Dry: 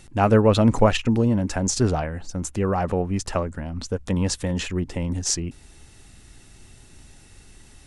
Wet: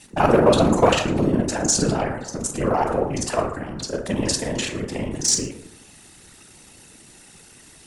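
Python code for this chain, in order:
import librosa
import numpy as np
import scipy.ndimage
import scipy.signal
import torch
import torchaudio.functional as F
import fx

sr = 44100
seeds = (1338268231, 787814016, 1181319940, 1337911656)

p1 = fx.local_reverse(x, sr, ms=33.0)
p2 = scipy.signal.sosfilt(scipy.signal.butter(2, 86.0, 'highpass', fs=sr, output='sos'), p1)
p3 = np.clip(p2, -10.0 ** (-16.0 / 20.0), 10.0 ** (-16.0 / 20.0))
p4 = p2 + (p3 * 10.0 ** (-7.5 / 20.0))
p5 = fx.high_shelf(p4, sr, hz=9400.0, db=8.0)
p6 = p5 + 10.0 ** (-21.0 / 20.0) * np.pad(p5, (int(114 * sr / 1000.0), 0))[:len(p5)]
p7 = fx.rev_plate(p6, sr, seeds[0], rt60_s=0.81, hf_ratio=0.4, predelay_ms=0, drr_db=3.0)
p8 = fx.whisperise(p7, sr, seeds[1])
y = fx.low_shelf(p8, sr, hz=280.0, db=-7.0)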